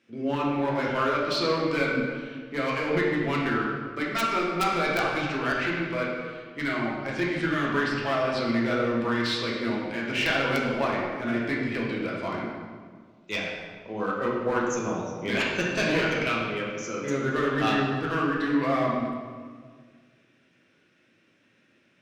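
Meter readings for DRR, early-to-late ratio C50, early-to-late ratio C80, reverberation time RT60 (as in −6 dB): −4.5 dB, 0.5 dB, 2.5 dB, 1.7 s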